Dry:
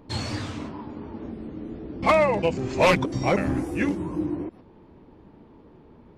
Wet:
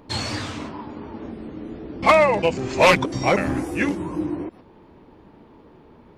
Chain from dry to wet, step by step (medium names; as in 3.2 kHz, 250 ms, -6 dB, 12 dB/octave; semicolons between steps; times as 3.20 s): bass shelf 450 Hz -6.5 dB; trim +6 dB